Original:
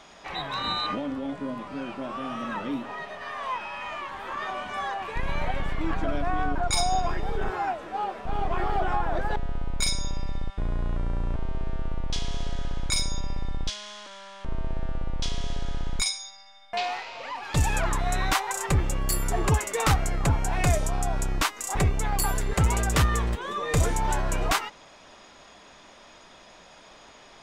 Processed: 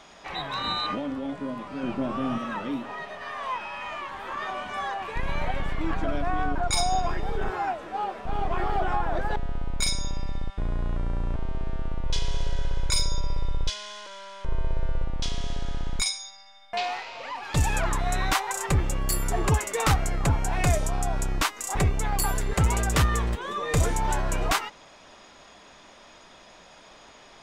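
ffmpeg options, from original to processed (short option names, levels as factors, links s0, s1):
-filter_complex "[0:a]asettb=1/sr,asplit=3[s0][s1][s2];[s0]atrim=end=1.834[s3];[s1]atrim=start=1.83:end=2.38,asetpts=PTS-STARTPTS,afade=t=in:d=0.004:c=qsin,afade=t=out:st=0.546:d=0.004:c=qsin,lowshelf=f=380:g=11.5[s4];[s2]atrim=start=2.376[s5];[s3][s4]acrossfade=d=0.004:c1=hsin:c2=qsin[s6];[s6][s5]acrossfade=d=0.004:c1=qsin:c2=hsin,asettb=1/sr,asplit=3[s7][s8][s9];[s7]atrim=end=12.054[s10];[s8]atrim=start=12.05:end=15.05,asetpts=PTS-STARTPTS,afade=t=in:d=0.004:c=qsin,afade=t=out:st=2.996:d=0.004:c=qsin,aecho=1:1:2:0.59,atrim=end_sample=132300[s11];[s9]atrim=start=15.046[s12];[s10][s11]acrossfade=d=0.004:c1=hsin:c2=qsin[s13];[s13][s12]acrossfade=d=0.004:c1=qsin:c2=hsin"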